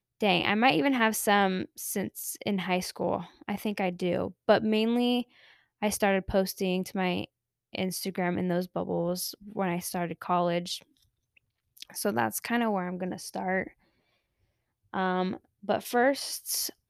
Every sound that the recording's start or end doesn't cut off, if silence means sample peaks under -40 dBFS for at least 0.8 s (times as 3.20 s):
11.77–13.68 s